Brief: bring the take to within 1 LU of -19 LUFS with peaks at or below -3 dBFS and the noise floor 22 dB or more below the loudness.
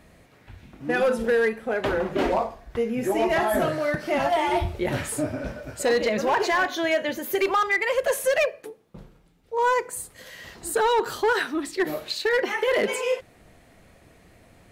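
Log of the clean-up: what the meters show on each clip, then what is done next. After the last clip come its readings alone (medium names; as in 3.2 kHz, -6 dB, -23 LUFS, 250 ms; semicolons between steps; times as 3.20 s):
clipped samples 1.2%; clipping level -16.0 dBFS; loudness -24.5 LUFS; peak level -16.0 dBFS; loudness target -19.0 LUFS
-> clip repair -16 dBFS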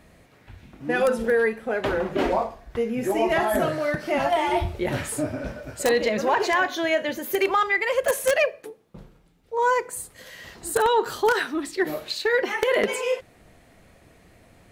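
clipped samples 0.0%; loudness -24.0 LUFS; peak level -7.0 dBFS; loudness target -19.0 LUFS
-> trim +5 dB; peak limiter -3 dBFS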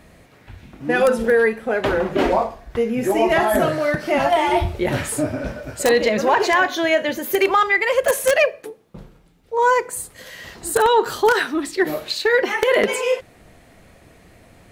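loudness -19.0 LUFS; peak level -3.0 dBFS; noise floor -50 dBFS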